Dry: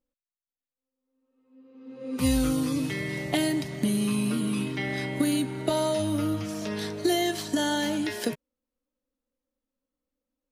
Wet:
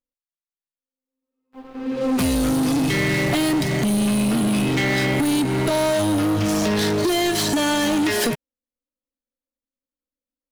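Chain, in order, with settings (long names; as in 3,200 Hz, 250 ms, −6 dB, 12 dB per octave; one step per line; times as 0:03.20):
downward compressor 12 to 1, threshold −29 dBFS, peak gain reduction 10.5 dB
leveller curve on the samples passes 5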